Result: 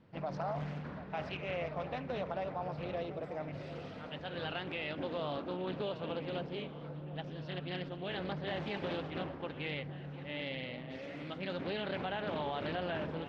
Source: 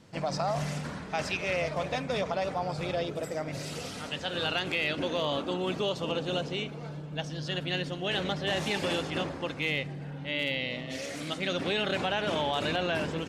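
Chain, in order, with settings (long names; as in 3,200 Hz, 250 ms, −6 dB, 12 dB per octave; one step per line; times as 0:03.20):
high-frequency loss of the air 350 metres
delay that swaps between a low-pass and a high-pass 736 ms, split 1,100 Hz, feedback 72%, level −12.5 dB
highs frequency-modulated by the lows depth 0.26 ms
level −6 dB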